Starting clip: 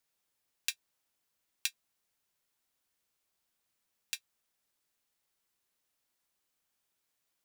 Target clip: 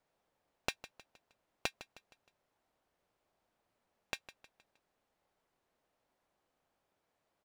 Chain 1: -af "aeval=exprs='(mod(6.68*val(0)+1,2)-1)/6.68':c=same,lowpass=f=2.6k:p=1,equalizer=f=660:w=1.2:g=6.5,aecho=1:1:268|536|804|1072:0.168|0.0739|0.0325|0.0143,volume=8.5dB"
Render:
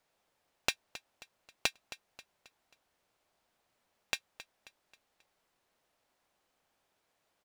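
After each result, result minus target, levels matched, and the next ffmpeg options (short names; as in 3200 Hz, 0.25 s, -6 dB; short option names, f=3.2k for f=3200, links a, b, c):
echo 0.112 s late; 1000 Hz band -3.0 dB
-af "aeval=exprs='(mod(6.68*val(0)+1,2)-1)/6.68':c=same,lowpass=f=2.6k:p=1,equalizer=f=660:w=1.2:g=6.5,aecho=1:1:156|312|468|624:0.168|0.0739|0.0325|0.0143,volume=8.5dB"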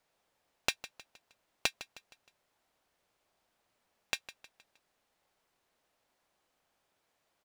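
1000 Hz band -4.0 dB
-af "aeval=exprs='(mod(6.68*val(0)+1,2)-1)/6.68':c=same,lowpass=f=940:p=1,equalizer=f=660:w=1.2:g=6.5,aecho=1:1:156|312|468|624:0.168|0.0739|0.0325|0.0143,volume=8.5dB"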